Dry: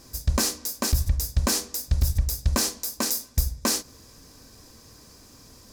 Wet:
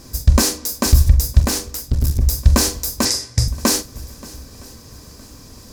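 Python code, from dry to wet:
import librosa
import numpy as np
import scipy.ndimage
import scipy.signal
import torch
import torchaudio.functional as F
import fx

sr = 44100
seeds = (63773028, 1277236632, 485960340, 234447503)

y = fx.low_shelf(x, sr, hz=330.0, db=5.0)
y = fx.echo_swing(y, sr, ms=964, ratio=1.5, feedback_pct=31, wet_db=-21.5)
y = fx.tube_stage(y, sr, drive_db=18.0, bias=0.75, at=(1.4, 2.22))
y = fx.cabinet(y, sr, low_hz=100.0, low_slope=12, high_hz=9500.0, hz=(120.0, 230.0, 2000.0, 5100.0), db=(9, -8, 7, 7), at=(3.05, 3.48))
y = fx.doubler(y, sr, ms=43.0, db=-13.0)
y = F.gain(torch.from_numpy(y), 6.5).numpy()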